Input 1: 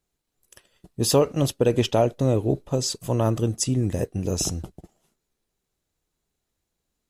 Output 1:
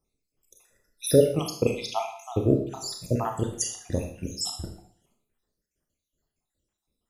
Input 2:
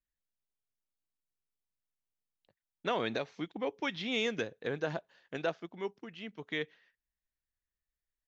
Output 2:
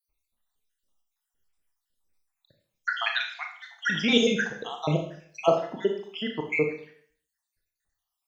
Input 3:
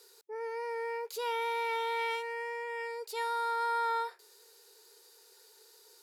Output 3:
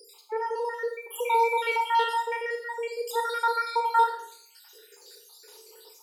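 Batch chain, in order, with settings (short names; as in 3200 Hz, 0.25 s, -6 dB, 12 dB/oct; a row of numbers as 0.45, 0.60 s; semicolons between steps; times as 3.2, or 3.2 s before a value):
random spectral dropouts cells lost 73%; Schroeder reverb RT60 0.55 s, combs from 26 ms, DRR 3 dB; match loudness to -27 LUFS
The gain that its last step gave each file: +0.5, +14.0, +11.0 dB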